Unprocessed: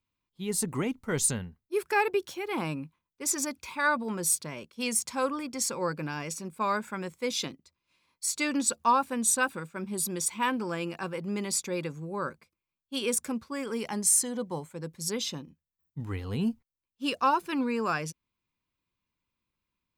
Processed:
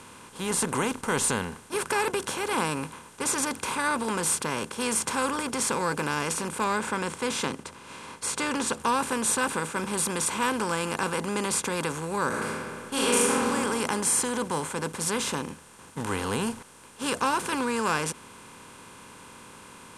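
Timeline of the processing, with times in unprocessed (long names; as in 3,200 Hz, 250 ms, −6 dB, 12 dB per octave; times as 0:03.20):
0:06.64–0:08.80: high-frequency loss of the air 66 metres
0:12.28–0:13.51: thrown reverb, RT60 0.95 s, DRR −7.5 dB
whole clip: compressor on every frequency bin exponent 0.4; low-pass filter 12,000 Hz 24 dB per octave; level −5 dB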